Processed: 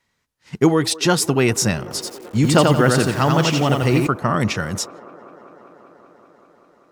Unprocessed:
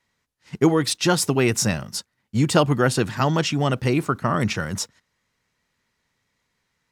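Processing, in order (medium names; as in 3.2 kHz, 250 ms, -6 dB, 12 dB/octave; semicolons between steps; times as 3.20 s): feedback echo behind a band-pass 194 ms, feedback 83%, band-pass 650 Hz, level -18 dB; 1.82–4.07 s: bit-crushed delay 87 ms, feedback 35%, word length 7-bit, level -3 dB; trim +2.5 dB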